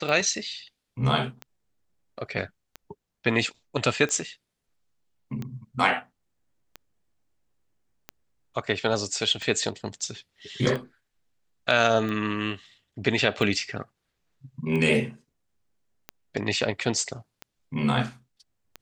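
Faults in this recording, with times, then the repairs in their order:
scratch tick 45 rpm −20 dBFS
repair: click removal

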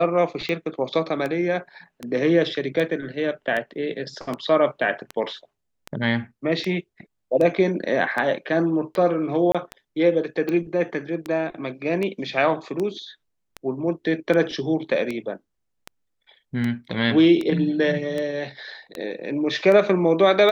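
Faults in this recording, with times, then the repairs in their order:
scratch tick 78 rpm −15 dBFS
0:09.52–0:09.55: drop-out 26 ms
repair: click removal
repair the gap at 0:09.52, 26 ms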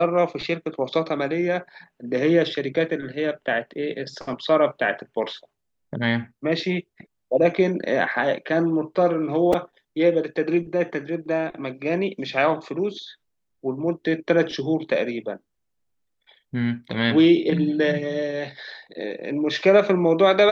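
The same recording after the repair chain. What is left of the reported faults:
none of them is left

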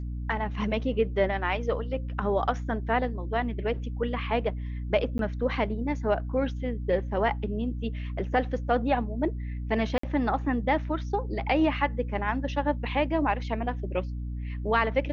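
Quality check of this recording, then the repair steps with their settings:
mains hum 60 Hz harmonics 5 −33 dBFS
0:05.18–0:05.19: drop-out 12 ms
0:09.98–0:10.03: drop-out 54 ms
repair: hum removal 60 Hz, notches 5
repair the gap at 0:05.18, 12 ms
repair the gap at 0:09.98, 54 ms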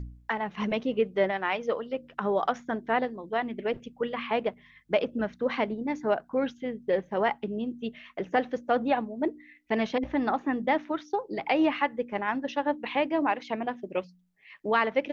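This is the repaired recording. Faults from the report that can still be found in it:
none of them is left

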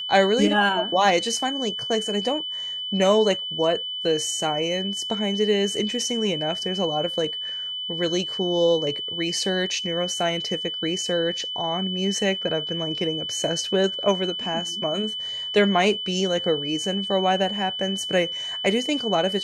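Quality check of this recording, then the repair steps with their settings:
whistle 3,000 Hz −28 dBFS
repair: notch filter 3,000 Hz, Q 30

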